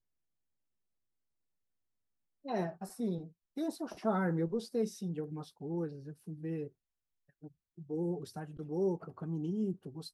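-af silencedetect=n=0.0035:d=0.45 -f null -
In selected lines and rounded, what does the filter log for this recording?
silence_start: 0.00
silence_end: 2.45 | silence_duration: 2.45
silence_start: 6.68
silence_end: 7.43 | silence_duration: 0.75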